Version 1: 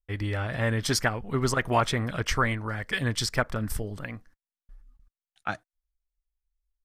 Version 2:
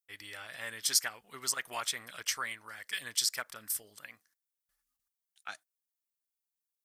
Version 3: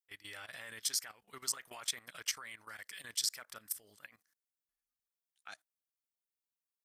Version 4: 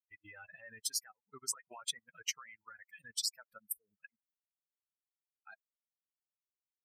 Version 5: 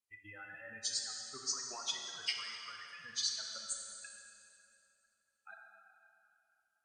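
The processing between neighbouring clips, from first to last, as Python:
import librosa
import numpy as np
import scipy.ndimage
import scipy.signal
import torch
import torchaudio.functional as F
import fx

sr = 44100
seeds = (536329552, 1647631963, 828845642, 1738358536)

y1 = np.diff(x, prepend=0.0)
y1 = F.gain(torch.from_numpy(y1), 3.0).numpy()
y2 = fx.level_steps(y1, sr, step_db=16)
y3 = fx.bin_expand(y2, sr, power=3.0)
y3 = F.gain(torch.from_numpy(y3), 3.5).numpy()
y4 = fx.freq_compress(y3, sr, knee_hz=3500.0, ratio=1.5)
y4 = fx.rev_plate(y4, sr, seeds[0], rt60_s=3.0, hf_ratio=0.75, predelay_ms=0, drr_db=0.5)
y4 = F.gain(torch.from_numpy(y4), 1.0).numpy()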